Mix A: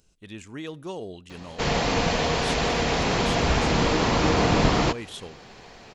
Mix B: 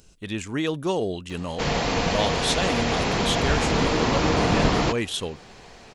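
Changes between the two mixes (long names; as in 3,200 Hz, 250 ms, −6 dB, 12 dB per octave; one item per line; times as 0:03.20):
speech +11.0 dB
reverb: off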